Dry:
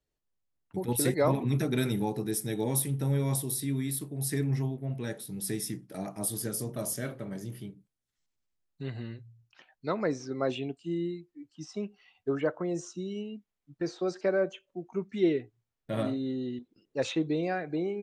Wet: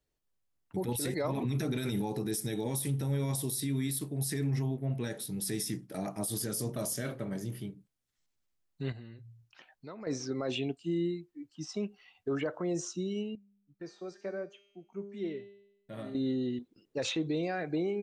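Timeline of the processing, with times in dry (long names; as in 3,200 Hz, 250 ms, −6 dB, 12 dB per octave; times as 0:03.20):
0:08.92–0:10.07: downward compressor 2.5 to 1, threshold −50 dBFS
0:13.35–0:16.15: tuned comb filter 200 Hz, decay 0.86 s, mix 80%
whole clip: dynamic equaliser 4,900 Hz, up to +4 dB, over −50 dBFS, Q 0.72; brickwall limiter −26 dBFS; level +1.5 dB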